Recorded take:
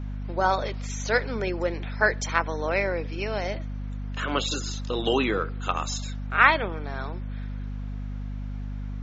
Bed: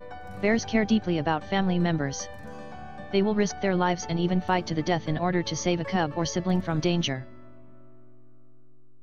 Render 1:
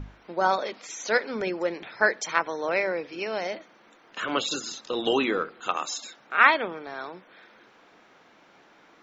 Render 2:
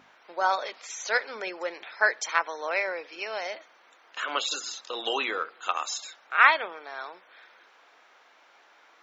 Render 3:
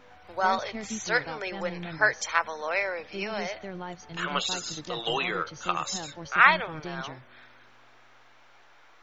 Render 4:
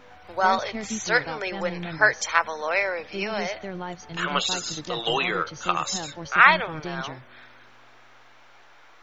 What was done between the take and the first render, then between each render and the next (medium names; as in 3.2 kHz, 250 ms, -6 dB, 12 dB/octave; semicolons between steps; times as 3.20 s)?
hum notches 50/100/150/200/250 Hz
high-pass 660 Hz 12 dB/octave
add bed -14 dB
trim +4 dB; peak limiter -1 dBFS, peak gain reduction 1.5 dB